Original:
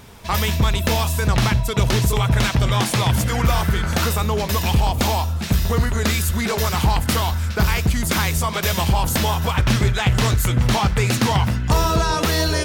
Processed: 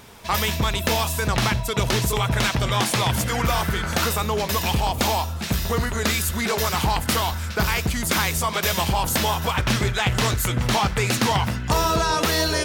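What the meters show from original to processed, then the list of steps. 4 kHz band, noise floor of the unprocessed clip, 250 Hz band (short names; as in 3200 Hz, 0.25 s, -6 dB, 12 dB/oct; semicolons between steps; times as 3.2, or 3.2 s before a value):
0.0 dB, -25 dBFS, -3.5 dB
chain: low shelf 190 Hz -8 dB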